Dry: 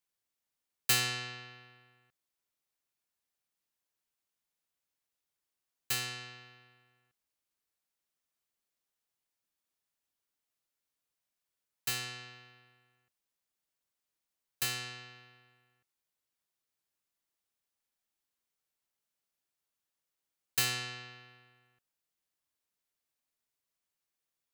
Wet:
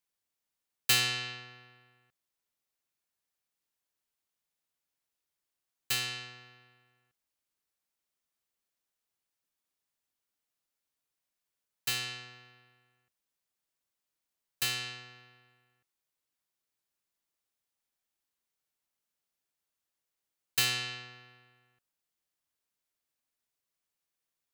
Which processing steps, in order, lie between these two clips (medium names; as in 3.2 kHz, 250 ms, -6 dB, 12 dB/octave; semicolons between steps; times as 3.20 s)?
dynamic bell 3.2 kHz, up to +5 dB, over -47 dBFS, Q 1.1